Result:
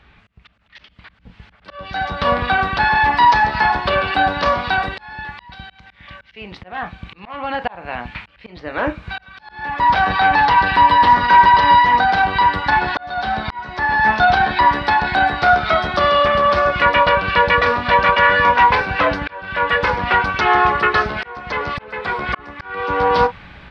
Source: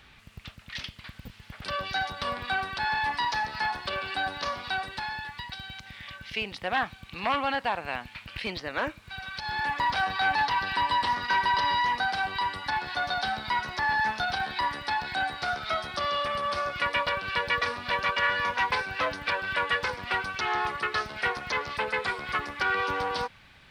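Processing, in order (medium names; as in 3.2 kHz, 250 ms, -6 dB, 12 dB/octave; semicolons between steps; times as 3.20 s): treble shelf 6.8 kHz -8 dB; in parallel at +2 dB: peak limiter -22 dBFS, peak gain reduction 6 dB; on the sum: tape spacing loss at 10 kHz 20 dB; level rider gain up to 13 dB; on a send at -8.5 dB: reverberation, pre-delay 8 ms; on the sum: slow attack 601 ms; trim -1.5 dB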